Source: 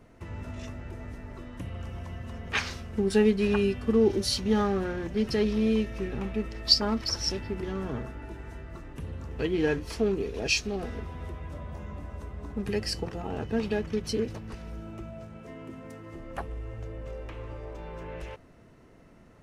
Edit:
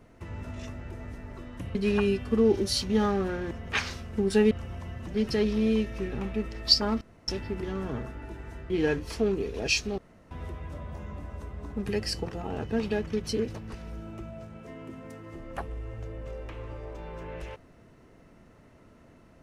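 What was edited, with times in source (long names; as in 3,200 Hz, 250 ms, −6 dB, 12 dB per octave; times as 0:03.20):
0:01.75–0:02.31: swap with 0:03.31–0:05.07
0:07.01–0:07.28: fill with room tone
0:08.70–0:09.50: remove
0:10.78–0:11.11: fill with room tone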